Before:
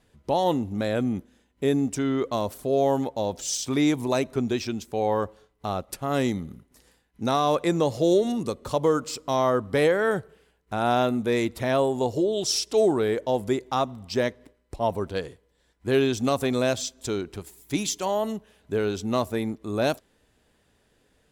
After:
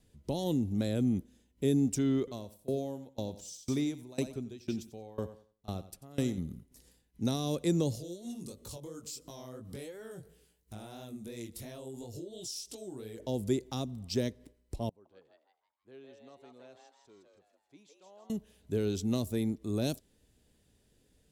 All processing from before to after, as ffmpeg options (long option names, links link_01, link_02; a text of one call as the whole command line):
ffmpeg -i in.wav -filter_complex "[0:a]asettb=1/sr,asplit=3[link_01][link_02][link_03];[link_01]atrim=end=2.184[link_04];[link_02]atrim=start=2.18:end=6.38,asetpts=PTS-STARTPTS,afade=type=in:duration=0.004:curve=qsin,afade=type=out:start_time=4.196:duration=0.004:curve=qsin,bandreject=frequency=6600:width=29,aecho=1:1:91|182|273|364:0.251|0.1|0.0402|0.0161,atrim=end_sample=185220,aeval=exprs='val(0)*pow(10,-23*if(lt(mod(2*n/s,1),2*abs(2)/1000),1-mod(2*n/s,1)/(2*abs(2)/1000),(mod(2*n/s,1)-2*abs(2)/1000)/(1-2*abs(2)/1000))/20)':channel_layout=same[link_05];[link_03]atrim=start=6.376[link_06];[link_04][link_05]acrossfade=duration=0.004:curve1=hsin:curve2=qsin[link_07];[link_07][link_06]acrossfade=duration=0.004:curve1=qsin:curve2=hsin,asettb=1/sr,asplit=3[link_08][link_09][link_10];[link_08]atrim=end=7.954[link_11];[link_09]atrim=start=7.95:end=13.2,asetpts=PTS-STARTPTS,afade=type=in:duration=0.004:curve=qsin,afade=type=out:start_time=5.246:duration=0.004:curve=qsin,highshelf=frequency=4800:gain=10.5,acompressor=threshold=-35dB:ratio=4:attack=3.2:release=140:knee=1:detection=peak,flanger=delay=17:depth=6.2:speed=2.9[link_12];[link_10]atrim=start=13.196[link_13];[link_11][link_12]acrossfade=duration=0.004:curve1=hsin:curve2=qsin[link_14];[link_14][link_13]acrossfade=duration=0.004:curve1=qsin:curve2=hsin,asettb=1/sr,asplit=3[link_15][link_16][link_17];[link_15]atrim=end=14.894[link_18];[link_16]atrim=start=14.89:end=18.3,asetpts=PTS-STARTPTS,afade=type=in:duration=0.004:curve=qsin,afade=type=out:start_time=3.406:duration=0.004:curve=qsin,lowpass=1000,aderivative,asplit=7[link_19][link_20][link_21][link_22][link_23][link_24][link_25];[link_20]adelay=161,afreqshift=150,volume=-4dB[link_26];[link_21]adelay=322,afreqshift=300,volume=-11.1dB[link_27];[link_22]adelay=483,afreqshift=450,volume=-18.3dB[link_28];[link_23]adelay=644,afreqshift=600,volume=-25.4dB[link_29];[link_24]adelay=805,afreqshift=750,volume=-32.5dB[link_30];[link_25]adelay=966,afreqshift=900,volume=-39.7dB[link_31];[link_19][link_26][link_27][link_28][link_29][link_30][link_31]amix=inputs=7:normalize=0,atrim=end_sample=150381[link_32];[link_17]atrim=start=18.296[link_33];[link_18][link_32]acrossfade=duration=0.004:curve1=hsin:curve2=qsin[link_34];[link_34][link_33]acrossfade=duration=0.004:curve1=qsin:curve2=hsin,acrossover=split=440|3000[link_35][link_36][link_37];[link_36]acompressor=threshold=-31dB:ratio=6[link_38];[link_35][link_38][link_37]amix=inputs=3:normalize=0,equalizer=frequency=1200:width_type=o:width=2.6:gain=-13.5" out.wav